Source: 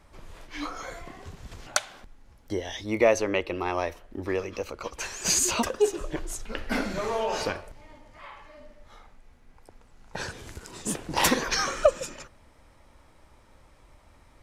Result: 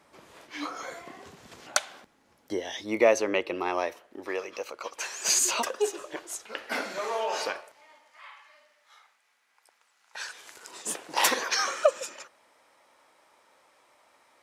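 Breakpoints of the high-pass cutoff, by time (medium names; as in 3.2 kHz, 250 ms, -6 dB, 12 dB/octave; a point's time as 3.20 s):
3.67 s 230 Hz
4.32 s 490 Hz
7.45 s 490 Hz
8.34 s 1.3 kHz
10.24 s 1.3 kHz
10.70 s 520 Hz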